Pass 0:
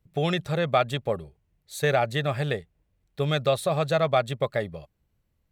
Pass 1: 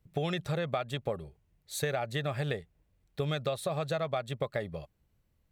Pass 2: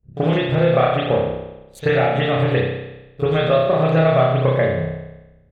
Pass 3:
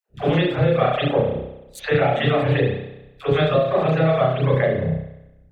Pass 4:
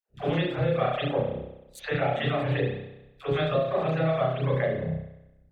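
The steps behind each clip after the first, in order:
compressor, threshold -29 dBFS, peak gain reduction 12.5 dB
Wiener smoothing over 41 samples; echo 80 ms -22 dB; reverb RT60 1.0 s, pre-delay 31 ms, DRR -17 dB
reverb removal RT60 0.59 s; compressor, threshold -19 dBFS, peak gain reduction 7.5 dB; dispersion lows, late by 97 ms, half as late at 530 Hz; gain +4.5 dB
notches 50/100/150/200/250/300/350/400/450 Hz; gain -7 dB

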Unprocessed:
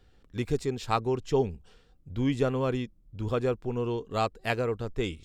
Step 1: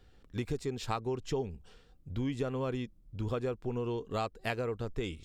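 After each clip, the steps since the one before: compressor 4:1, threshold -31 dBFS, peak gain reduction 9.5 dB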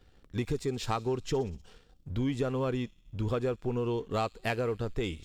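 thin delay 61 ms, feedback 70%, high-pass 4100 Hz, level -16 dB; sample leveller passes 1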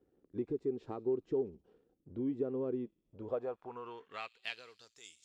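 band-pass sweep 350 Hz -> 7000 Hz, 2.96–5.02

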